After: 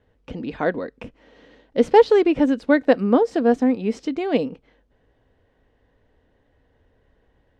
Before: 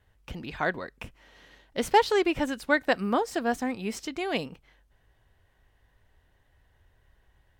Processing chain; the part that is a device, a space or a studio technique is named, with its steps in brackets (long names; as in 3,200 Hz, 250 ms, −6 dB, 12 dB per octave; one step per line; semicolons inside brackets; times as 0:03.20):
inside a cardboard box (low-pass filter 5,300 Hz 12 dB per octave; hollow resonant body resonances 270/460 Hz, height 14 dB, ringing for 25 ms)
level −1 dB